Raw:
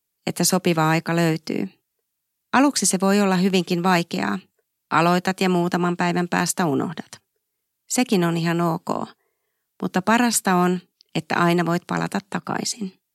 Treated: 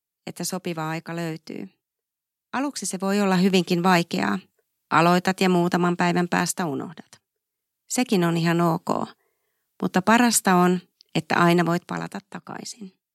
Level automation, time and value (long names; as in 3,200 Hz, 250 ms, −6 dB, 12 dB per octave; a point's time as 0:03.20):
0:02.88 −9.5 dB
0:03.37 0 dB
0:06.31 0 dB
0:06.96 −10 dB
0:08.46 +0.5 dB
0:11.63 +0.5 dB
0:12.22 −10 dB